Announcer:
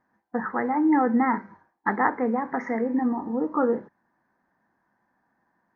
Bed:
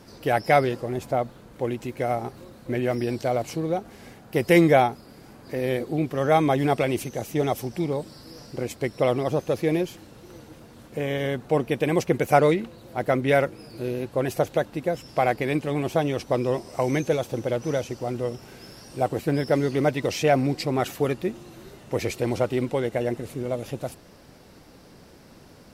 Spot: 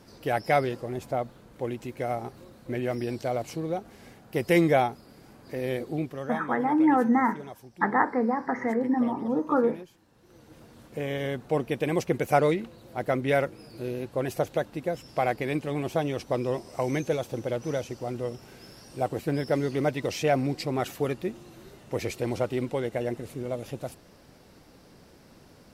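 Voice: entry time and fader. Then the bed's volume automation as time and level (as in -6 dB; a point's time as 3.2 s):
5.95 s, -0.5 dB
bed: 5.98 s -4.5 dB
6.47 s -18 dB
10.04 s -18 dB
10.6 s -4 dB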